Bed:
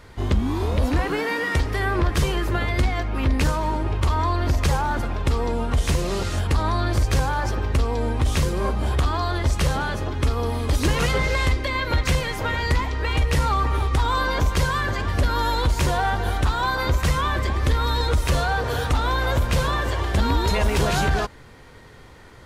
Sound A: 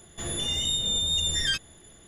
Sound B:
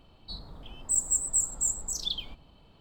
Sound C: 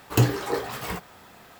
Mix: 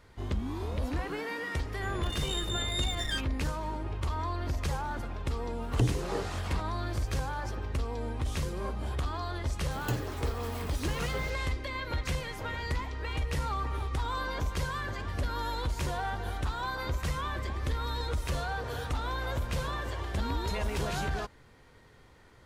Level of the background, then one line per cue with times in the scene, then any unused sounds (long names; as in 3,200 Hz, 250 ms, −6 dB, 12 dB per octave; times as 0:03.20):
bed −11.5 dB
0:01.64: mix in A −5.5 dB + adaptive Wiener filter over 9 samples
0:05.62: mix in C −7 dB + treble cut that deepens with the level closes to 410 Hz, closed at −17 dBFS
0:09.71: mix in C −13.5 dB + converter with a step at zero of −33 dBFS
not used: B